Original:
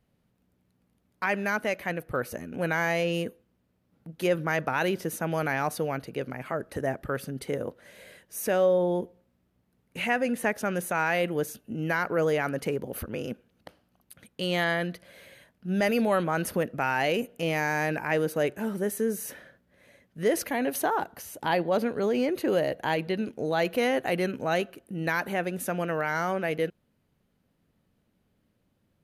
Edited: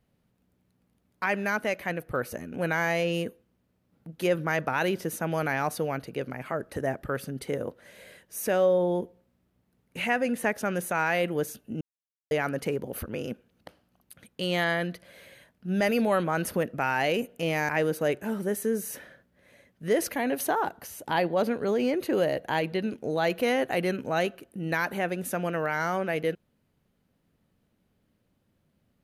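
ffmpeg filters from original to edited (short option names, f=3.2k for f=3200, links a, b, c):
-filter_complex "[0:a]asplit=4[a][b][c][d];[a]atrim=end=11.81,asetpts=PTS-STARTPTS,afade=t=out:st=11.806:d=0.004:c=hsin[e];[b]atrim=start=11.81:end=12.31,asetpts=PTS-STARTPTS,volume=0[f];[c]atrim=start=12.31:end=17.692,asetpts=PTS-STARTPTS,afade=t=in:d=0.004:c=hsin[g];[d]atrim=start=18.038[h];[e][f][g]concat=n=3:v=0:a=1[i];[i][h]acrossfade=d=0.004:c1=hsin:c2=hsin"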